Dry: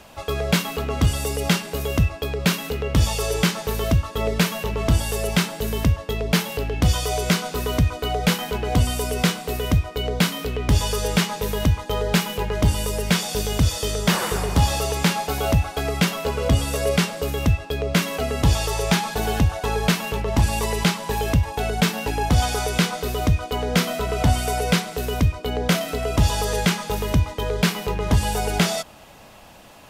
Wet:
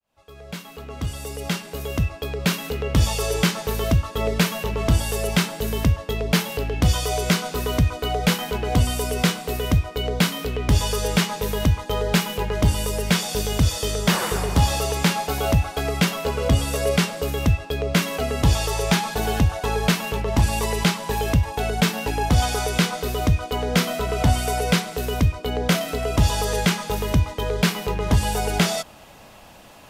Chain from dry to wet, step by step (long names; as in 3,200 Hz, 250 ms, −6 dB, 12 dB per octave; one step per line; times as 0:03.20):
fade in at the beginning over 2.95 s